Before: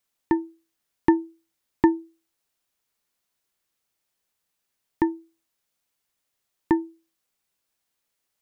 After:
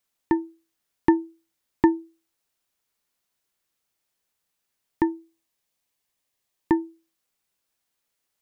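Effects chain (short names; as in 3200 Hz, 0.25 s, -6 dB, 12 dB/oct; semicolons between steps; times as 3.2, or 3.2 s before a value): 5.16–6.81 notch 1400 Hz, Q 7.4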